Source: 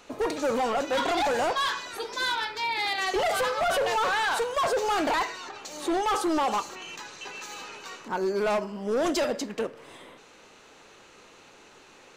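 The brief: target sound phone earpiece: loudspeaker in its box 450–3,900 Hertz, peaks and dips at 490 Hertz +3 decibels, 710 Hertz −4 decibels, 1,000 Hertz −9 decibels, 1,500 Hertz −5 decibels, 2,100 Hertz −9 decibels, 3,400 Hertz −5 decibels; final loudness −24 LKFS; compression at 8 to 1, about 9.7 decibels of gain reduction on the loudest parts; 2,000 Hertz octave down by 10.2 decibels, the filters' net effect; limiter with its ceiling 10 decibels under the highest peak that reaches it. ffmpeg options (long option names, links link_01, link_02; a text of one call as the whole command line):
ffmpeg -i in.wav -af "equalizer=frequency=2000:width_type=o:gain=-5,acompressor=threshold=-34dB:ratio=8,alimiter=level_in=11dB:limit=-24dB:level=0:latency=1,volume=-11dB,highpass=450,equalizer=frequency=490:width_type=q:width=4:gain=3,equalizer=frequency=710:width_type=q:width=4:gain=-4,equalizer=frequency=1000:width_type=q:width=4:gain=-9,equalizer=frequency=1500:width_type=q:width=4:gain=-5,equalizer=frequency=2100:width_type=q:width=4:gain=-9,equalizer=frequency=3400:width_type=q:width=4:gain=-5,lowpass=frequency=3900:width=0.5412,lowpass=frequency=3900:width=1.3066,volume=21.5dB" out.wav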